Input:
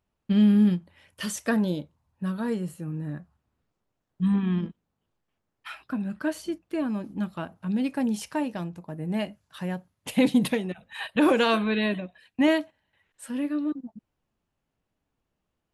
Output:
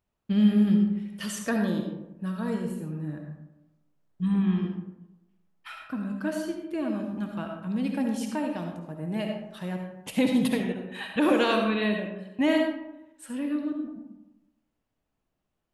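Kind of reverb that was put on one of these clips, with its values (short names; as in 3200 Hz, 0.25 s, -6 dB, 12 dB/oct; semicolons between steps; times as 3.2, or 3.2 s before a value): digital reverb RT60 0.95 s, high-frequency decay 0.45×, pre-delay 30 ms, DRR 2.5 dB; gain -3 dB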